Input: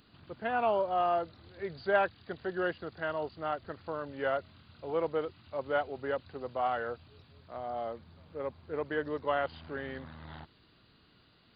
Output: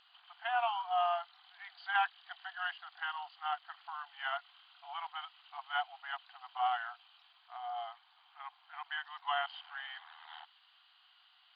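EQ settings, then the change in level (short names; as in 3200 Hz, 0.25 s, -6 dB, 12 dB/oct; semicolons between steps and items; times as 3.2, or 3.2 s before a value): brick-wall FIR high-pass 690 Hz; air absorption 130 m; bell 3100 Hz +13 dB 0.21 oct; 0.0 dB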